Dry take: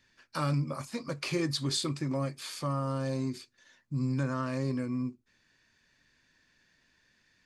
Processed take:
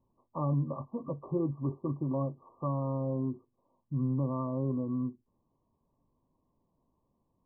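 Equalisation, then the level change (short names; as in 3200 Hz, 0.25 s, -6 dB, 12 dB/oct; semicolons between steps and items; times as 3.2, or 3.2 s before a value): brick-wall FIR low-pass 1200 Hz; 0.0 dB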